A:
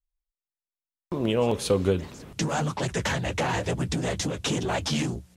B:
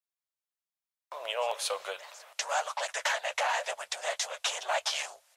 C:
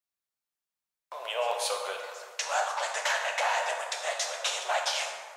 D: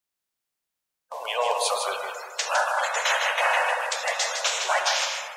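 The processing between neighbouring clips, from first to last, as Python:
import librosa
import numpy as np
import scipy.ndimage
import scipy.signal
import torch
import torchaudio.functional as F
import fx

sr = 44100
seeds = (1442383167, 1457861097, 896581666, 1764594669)

y1 = scipy.signal.sosfilt(scipy.signal.ellip(4, 1.0, 50, 600.0, 'highpass', fs=sr, output='sos'), x)
y2 = fx.rev_plate(y1, sr, seeds[0], rt60_s=1.7, hf_ratio=0.5, predelay_ms=0, drr_db=1.5)
y3 = fx.spec_quant(y2, sr, step_db=30)
y3 = y3 + 10.0 ** (-6.0 / 20.0) * np.pad(y3, (int(157 * sr / 1000.0), 0))[:len(y3)]
y3 = y3 * 10.0 ** (5.5 / 20.0)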